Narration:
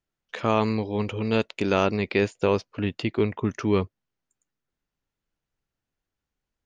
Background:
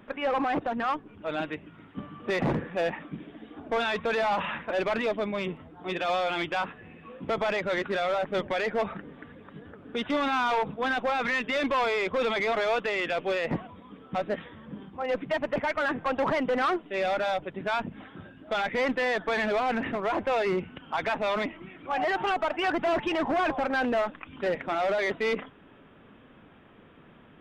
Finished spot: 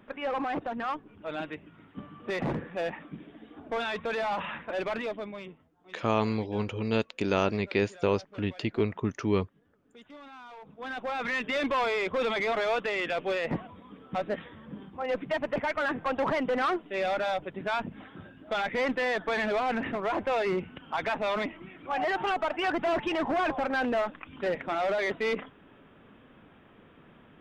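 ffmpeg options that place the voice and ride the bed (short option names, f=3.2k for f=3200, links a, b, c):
-filter_complex "[0:a]adelay=5600,volume=-4dB[a];[1:a]volume=16dB,afade=t=out:st=4.9:d=0.81:silence=0.133352,afade=t=in:st=10.61:d=0.85:silence=0.1[b];[a][b]amix=inputs=2:normalize=0"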